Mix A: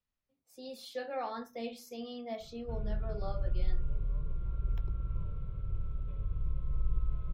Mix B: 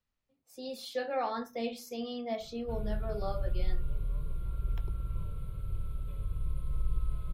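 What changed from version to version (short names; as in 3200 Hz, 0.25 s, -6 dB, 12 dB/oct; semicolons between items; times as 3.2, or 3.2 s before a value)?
speech +4.5 dB; background: remove air absorption 380 m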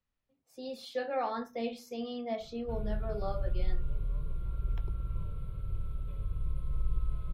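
master: add high shelf 5700 Hz -9.5 dB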